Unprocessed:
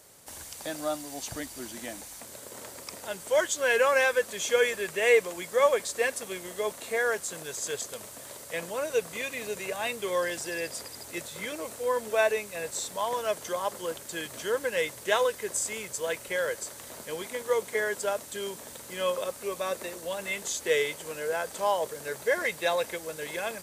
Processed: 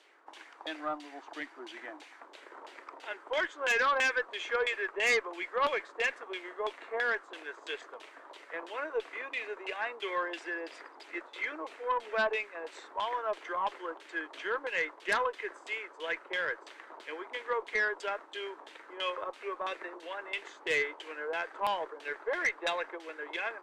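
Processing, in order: LFO low-pass saw down 3 Hz 870–3400 Hz; elliptic high-pass 310 Hz, stop band 50 dB; peaking EQ 560 Hz -8 dB 0.62 oct; Chebyshev shaper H 3 -14 dB, 4 -18 dB, 5 -11 dB, 6 -20 dB, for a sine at -8.5 dBFS; trim -7.5 dB

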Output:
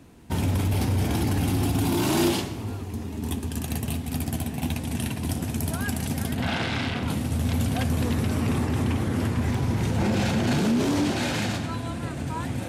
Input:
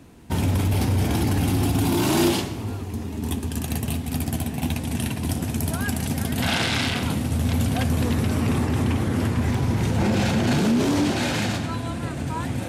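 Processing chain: 6.35–7.08 s: low-pass 2.3 kHz 6 dB/octave; trim -2.5 dB

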